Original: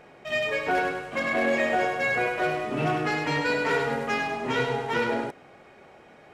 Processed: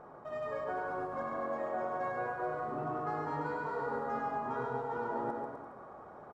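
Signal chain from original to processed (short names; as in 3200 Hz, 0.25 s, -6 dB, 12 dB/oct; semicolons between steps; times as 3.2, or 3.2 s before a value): resonant high shelf 1700 Hz -13.5 dB, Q 3; reverse; compressor 6:1, threshold -33 dBFS, peak gain reduction 14 dB; reverse; bouncing-ball echo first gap 0.14 s, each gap 0.8×, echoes 5; gain -3 dB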